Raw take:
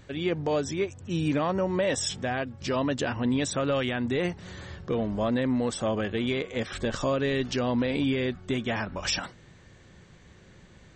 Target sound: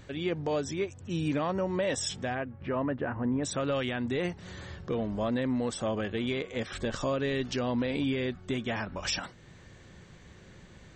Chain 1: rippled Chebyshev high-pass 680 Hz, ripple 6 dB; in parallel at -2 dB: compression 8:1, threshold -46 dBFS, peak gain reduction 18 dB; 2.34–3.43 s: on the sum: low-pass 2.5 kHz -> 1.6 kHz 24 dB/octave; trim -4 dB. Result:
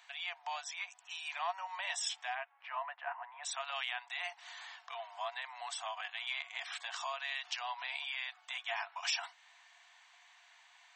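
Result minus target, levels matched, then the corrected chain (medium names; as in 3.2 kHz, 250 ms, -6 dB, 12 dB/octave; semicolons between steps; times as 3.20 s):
500 Hz band -10.5 dB
in parallel at -2 dB: compression 8:1, threshold -46 dBFS, peak gain reduction 22.5 dB; 2.34–3.43 s: on the sum: low-pass 2.5 kHz -> 1.6 kHz 24 dB/octave; trim -4 dB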